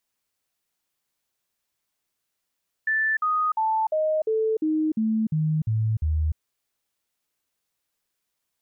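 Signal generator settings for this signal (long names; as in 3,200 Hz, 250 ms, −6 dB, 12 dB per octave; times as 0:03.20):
stepped sweep 1,760 Hz down, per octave 2, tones 10, 0.30 s, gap 0.05 s −20 dBFS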